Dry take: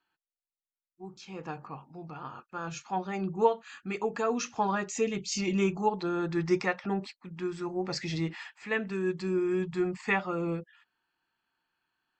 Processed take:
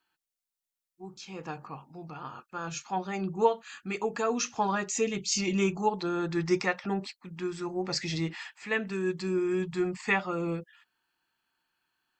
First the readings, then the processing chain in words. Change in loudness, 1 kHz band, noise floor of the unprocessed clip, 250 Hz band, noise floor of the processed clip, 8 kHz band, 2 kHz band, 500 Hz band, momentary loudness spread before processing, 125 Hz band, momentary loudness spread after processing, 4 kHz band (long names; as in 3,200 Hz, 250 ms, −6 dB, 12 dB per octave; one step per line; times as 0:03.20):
+0.5 dB, +0.5 dB, below −85 dBFS, 0.0 dB, below −85 dBFS, +5.5 dB, +1.5 dB, 0.0 dB, 15 LU, 0.0 dB, 14 LU, +4.0 dB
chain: high-shelf EQ 3,700 Hz +7 dB